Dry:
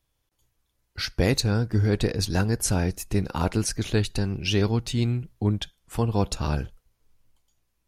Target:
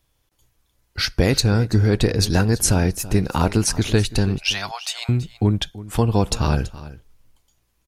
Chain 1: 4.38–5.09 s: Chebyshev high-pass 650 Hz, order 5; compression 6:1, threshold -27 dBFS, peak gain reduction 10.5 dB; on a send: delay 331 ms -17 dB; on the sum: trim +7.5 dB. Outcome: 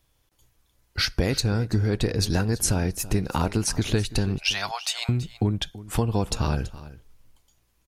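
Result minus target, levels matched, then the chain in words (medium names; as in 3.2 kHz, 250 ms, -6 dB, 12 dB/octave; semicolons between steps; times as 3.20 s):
compression: peak gain reduction +6.5 dB
4.38–5.09 s: Chebyshev high-pass 650 Hz, order 5; compression 6:1, threshold -19 dBFS, peak gain reduction 4 dB; on a send: delay 331 ms -17 dB; on the sum: trim +7.5 dB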